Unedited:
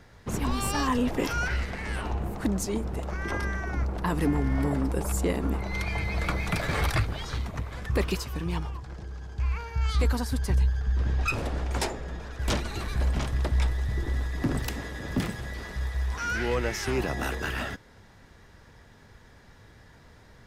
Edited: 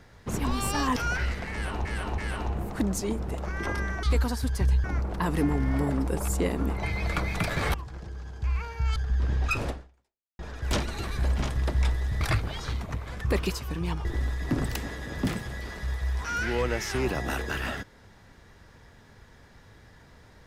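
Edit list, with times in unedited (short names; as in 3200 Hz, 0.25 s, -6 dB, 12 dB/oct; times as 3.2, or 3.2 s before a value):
0.96–1.27 cut
1.83–2.16 loop, 3 plays
5.67–5.95 cut
6.86–8.7 move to 13.98
9.92–10.73 move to 3.68
11.47–12.16 fade out exponential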